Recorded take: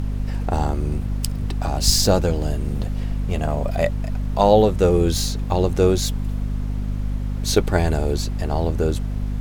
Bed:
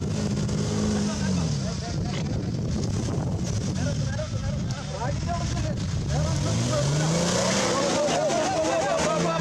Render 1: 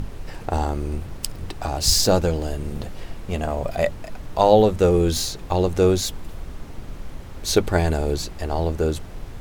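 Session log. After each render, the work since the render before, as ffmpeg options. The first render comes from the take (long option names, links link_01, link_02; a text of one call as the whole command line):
ffmpeg -i in.wav -af "bandreject=frequency=50:width_type=h:width=6,bandreject=frequency=100:width_type=h:width=6,bandreject=frequency=150:width_type=h:width=6,bandreject=frequency=200:width_type=h:width=6,bandreject=frequency=250:width_type=h:width=6" out.wav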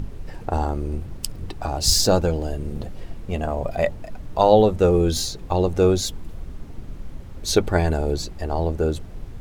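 ffmpeg -i in.wav -af "afftdn=noise_reduction=7:noise_floor=-37" out.wav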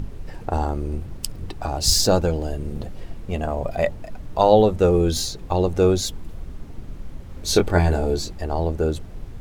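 ffmpeg -i in.wav -filter_complex "[0:a]asettb=1/sr,asplit=3[link_01][link_02][link_03];[link_01]atrim=end=7.274[link_04];[link_02]atrim=start=7.27:end=8.35,asetpts=PTS-STARTPTS,afade=type=in:duration=0.004:curve=qsin,afade=type=out:start_time=1.076:duration=0.004:curve=qsin,asplit=2[link_05][link_06];[link_06]adelay=23,volume=-5dB[link_07];[link_05][link_07]amix=inputs=2:normalize=0,atrim=end_sample=47628[link_08];[link_03]atrim=start=8.346[link_09];[link_04][link_08]acrossfade=duration=0.004:curve1=hsin:curve2=qsin[link_10];[link_10][link_09]acrossfade=duration=0.004:curve1=qsin:curve2=hsin" out.wav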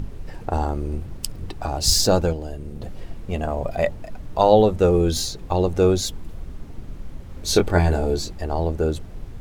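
ffmpeg -i in.wav -filter_complex "[0:a]asplit=3[link_01][link_02][link_03];[link_01]atrim=end=2.332[link_04];[link_02]atrim=start=2.328:end=2.822,asetpts=PTS-STARTPTS,volume=-5dB[link_05];[link_03]atrim=start=2.818[link_06];[link_04][link_05]acrossfade=duration=0.004:curve1=hsin:curve2=hsin[link_07];[link_07][link_06]acrossfade=duration=0.004:curve1=hsin:curve2=hsin" out.wav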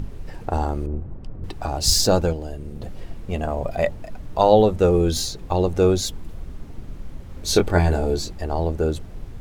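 ffmpeg -i in.wav -filter_complex "[0:a]asettb=1/sr,asplit=3[link_01][link_02][link_03];[link_01]atrim=end=0.864[link_04];[link_02]atrim=start=0.86:end=1.44,asetpts=PTS-STARTPTS,afade=type=in:duration=0.004:curve=qsin,afade=type=out:start_time=0.576:duration=0.004:curve=qsin,lowpass=1100[link_05];[link_03]atrim=start=1.436[link_06];[link_04][link_05]acrossfade=duration=0.004:curve1=hsin:curve2=qsin[link_07];[link_07][link_06]acrossfade=duration=0.004:curve1=qsin:curve2=hsin" out.wav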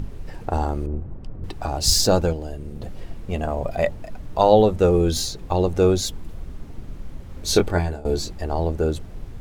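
ffmpeg -i in.wav -filter_complex "[0:a]asplit=2[link_01][link_02];[link_01]atrim=end=8.05,asetpts=PTS-STARTPTS,afade=type=out:start_time=7.61:duration=0.44:silence=0.1[link_03];[link_02]atrim=start=8.05,asetpts=PTS-STARTPTS,afade=type=in:duration=0.004:curve=hsin:silence=0.1[link_04];[link_03][link_04]concat=n=2:v=0:a=1" out.wav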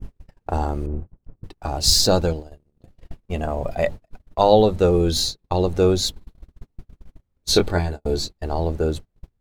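ffmpeg -i in.wav -af "agate=range=-37dB:threshold=-27dB:ratio=16:detection=peak,adynamicequalizer=threshold=0.00631:dfrequency=4100:dqfactor=4.1:tfrequency=4100:tqfactor=4.1:attack=5:release=100:ratio=0.375:range=4:mode=boostabove:tftype=bell" out.wav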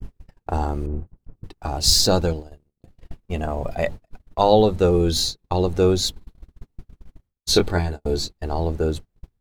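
ffmpeg -i in.wav -af "agate=range=-33dB:threshold=-50dB:ratio=3:detection=peak,equalizer=frequency=590:width=4.3:gain=-3" out.wav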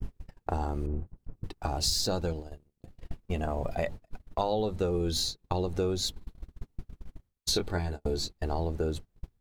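ffmpeg -i in.wav -af "acompressor=threshold=-28dB:ratio=4" out.wav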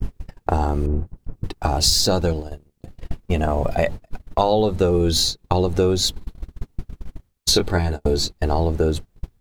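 ffmpeg -i in.wav -af "volume=11dB" out.wav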